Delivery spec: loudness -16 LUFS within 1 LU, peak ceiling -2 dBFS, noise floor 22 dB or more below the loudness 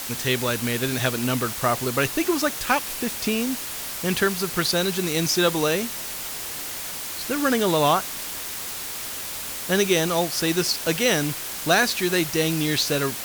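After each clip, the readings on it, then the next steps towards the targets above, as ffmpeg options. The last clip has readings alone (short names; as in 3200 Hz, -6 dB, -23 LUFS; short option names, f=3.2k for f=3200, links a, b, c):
noise floor -32 dBFS; noise floor target -45 dBFS; loudness -23.0 LUFS; peak -7.5 dBFS; loudness target -16.0 LUFS
-> -af "afftdn=nr=13:nf=-32"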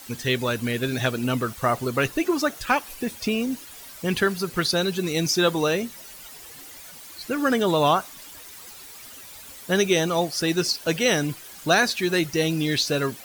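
noise floor -43 dBFS; noise floor target -46 dBFS
-> -af "afftdn=nr=6:nf=-43"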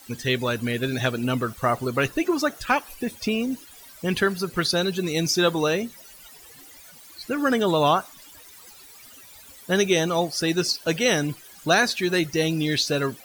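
noise floor -47 dBFS; loudness -23.5 LUFS; peak -8.0 dBFS; loudness target -16.0 LUFS
-> -af "volume=7.5dB,alimiter=limit=-2dB:level=0:latency=1"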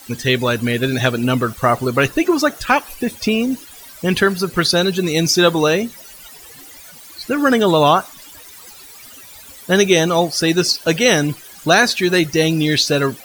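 loudness -16.0 LUFS; peak -2.0 dBFS; noise floor -40 dBFS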